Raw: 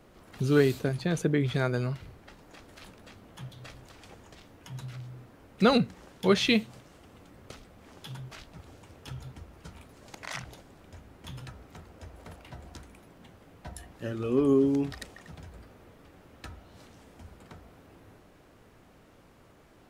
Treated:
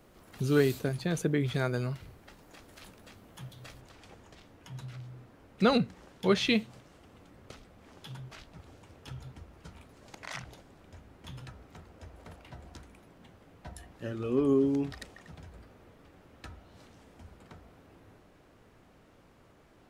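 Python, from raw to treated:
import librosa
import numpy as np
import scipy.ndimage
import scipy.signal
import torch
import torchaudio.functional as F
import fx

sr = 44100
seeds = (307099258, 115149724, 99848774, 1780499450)

y = fx.high_shelf(x, sr, hz=9000.0, db=fx.steps((0.0, 7.5), (3.8, -5.0)))
y = F.gain(torch.from_numpy(y), -2.5).numpy()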